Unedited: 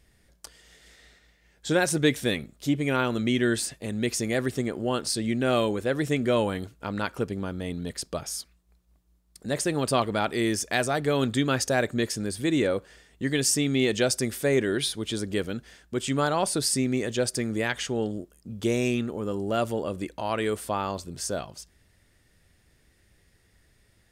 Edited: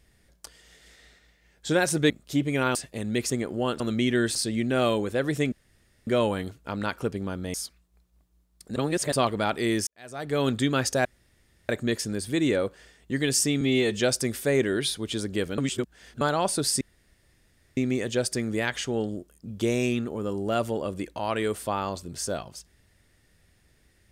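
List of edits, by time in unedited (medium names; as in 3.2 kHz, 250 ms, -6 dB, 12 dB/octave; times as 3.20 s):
2.10–2.43 s: delete
3.08–3.63 s: move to 5.06 s
4.18–4.56 s: delete
6.23 s: insert room tone 0.55 s
7.70–8.29 s: delete
9.51–9.87 s: reverse
10.62–11.15 s: fade in quadratic
11.80 s: insert room tone 0.64 s
13.72–13.98 s: stretch 1.5×
15.56–16.19 s: reverse
16.79 s: insert room tone 0.96 s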